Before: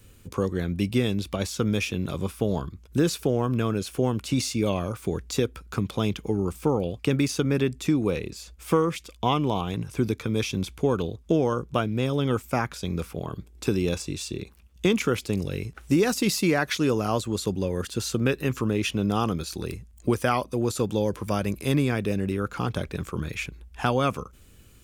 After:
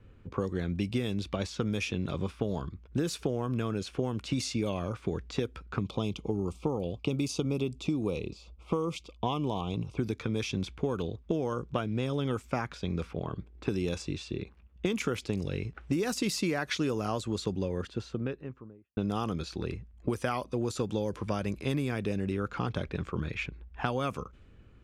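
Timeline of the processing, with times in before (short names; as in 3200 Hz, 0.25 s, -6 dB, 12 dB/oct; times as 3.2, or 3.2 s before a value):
5.82–9.98 Butterworth band-stop 1700 Hz, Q 1.5
17.43–18.97 studio fade out
whole clip: low-pass opened by the level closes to 1700 Hz, open at -18 dBFS; compressor, threshold -24 dBFS; gain -2 dB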